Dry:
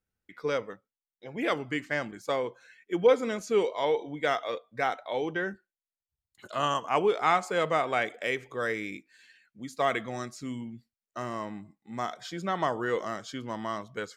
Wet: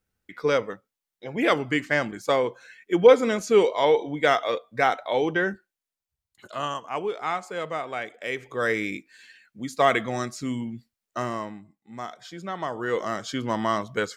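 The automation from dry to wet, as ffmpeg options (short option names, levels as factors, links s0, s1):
-af "volume=29.9,afade=t=out:st=5.45:d=1.37:silence=0.281838,afade=t=in:st=8.18:d=0.59:silence=0.281838,afade=t=out:st=11.19:d=0.41:silence=0.334965,afade=t=in:st=12.68:d=0.79:silence=0.266073"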